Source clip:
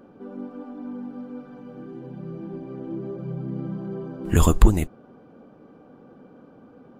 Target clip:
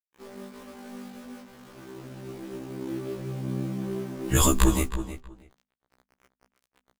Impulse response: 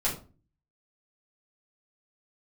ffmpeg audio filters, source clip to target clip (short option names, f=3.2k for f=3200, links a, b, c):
-filter_complex "[0:a]aeval=exprs='sgn(val(0))*max(abs(val(0))-0.00708,0)':c=same,highshelf=f=2.3k:g=10,acrusher=bits=7:mix=0:aa=0.000001,bandreject=f=50:t=h:w=6,bandreject=f=100:t=h:w=6,bandreject=f=150:t=h:w=6,bandreject=f=200:t=h:w=6,bandreject=f=250:t=h:w=6,asplit=2[a][b];[b]adelay=319,lowpass=f=3.3k:p=1,volume=-10.5dB,asplit=2[c][d];[d]adelay=319,lowpass=f=3.3k:p=1,volume=0.18[e];[a][c][e]amix=inputs=3:normalize=0,afftfilt=real='re*1.73*eq(mod(b,3),0)':imag='im*1.73*eq(mod(b,3),0)':win_size=2048:overlap=0.75"